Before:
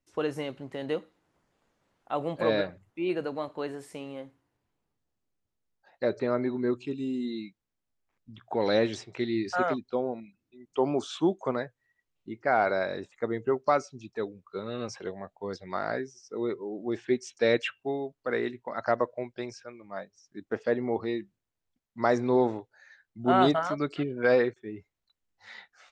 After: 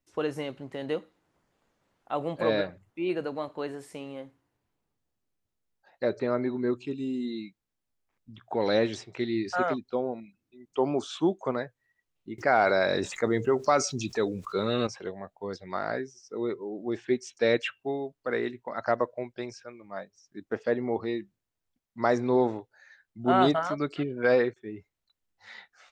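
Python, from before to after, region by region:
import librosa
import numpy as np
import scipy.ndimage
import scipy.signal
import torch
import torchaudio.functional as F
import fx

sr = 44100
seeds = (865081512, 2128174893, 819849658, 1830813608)

y = fx.chain(x, sr, fx.peak_eq(hz=7200.0, db=7.5, octaves=2.0),
    fx.env_flatten(amount_pct=50), at=(12.38, 14.87))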